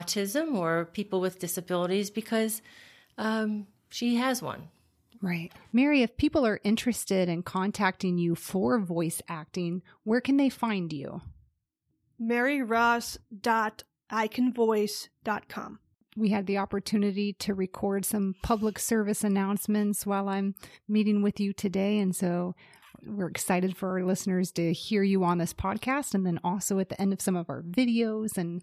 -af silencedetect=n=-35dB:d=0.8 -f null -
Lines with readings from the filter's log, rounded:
silence_start: 11.27
silence_end: 12.20 | silence_duration: 0.93